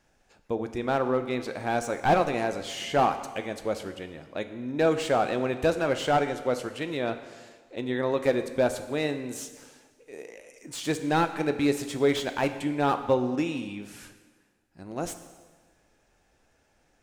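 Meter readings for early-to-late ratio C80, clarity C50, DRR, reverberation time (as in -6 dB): 12.0 dB, 11.0 dB, 8.5 dB, 1.4 s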